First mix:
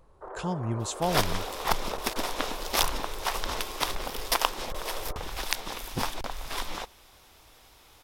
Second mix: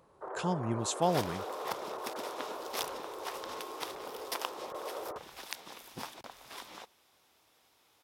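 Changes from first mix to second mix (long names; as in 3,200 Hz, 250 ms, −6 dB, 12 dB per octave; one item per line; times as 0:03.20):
second sound −11.5 dB
master: add high-pass filter 150 Hz 12 dB per octave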